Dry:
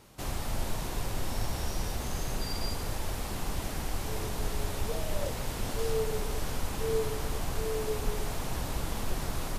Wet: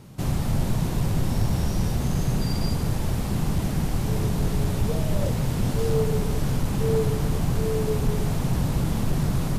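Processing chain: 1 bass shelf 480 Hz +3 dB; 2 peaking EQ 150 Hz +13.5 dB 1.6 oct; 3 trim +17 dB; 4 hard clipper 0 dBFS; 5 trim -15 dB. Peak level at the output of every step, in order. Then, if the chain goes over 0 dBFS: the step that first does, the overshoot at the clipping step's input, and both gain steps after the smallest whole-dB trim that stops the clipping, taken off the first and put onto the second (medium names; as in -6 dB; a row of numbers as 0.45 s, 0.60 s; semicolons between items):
-13.5 dBFS, -11.5 dBFS, +5.5 dBFS, 0.0 dBFS, -15.0 dBFS; step 3, 5.5 dB; step 3 +11 dB, step 5 -9 dB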